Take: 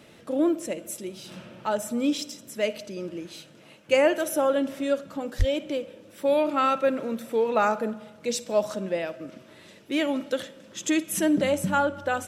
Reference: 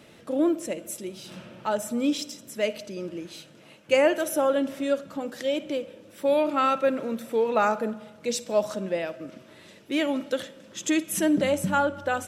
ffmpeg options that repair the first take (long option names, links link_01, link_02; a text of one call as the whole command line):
ffmpeg -i in.wav -filter_complex "[0:a]asplit=3[link_01][link_02][link_03];[link_01]afade=type=out:start_time=5.38:duration=0.02[link_04];[link_02]highpass=frequency=140:width=0.5412,highpass=frequency=140:width=1.3066,afade=type=in:start_time=5.38:duration=0.02,afade=type=out:start_time=5.5:duration=0.02[link_05];[link_03]afade=type=in:start_time=5.5:duration=0.02[link_06];[link_04][link_05][link_06]amix=inputs=3:normalize=0" out.wav